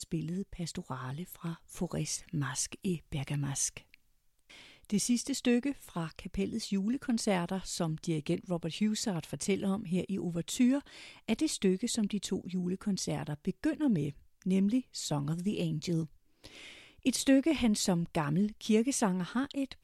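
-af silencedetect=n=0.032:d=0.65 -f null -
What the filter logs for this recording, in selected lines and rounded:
silence_start: 3.77
silence_end: 4.90 | silence_duration: 1.13
silence_start: 16.03
silence_end: 17.06 | silence_duration: 1.04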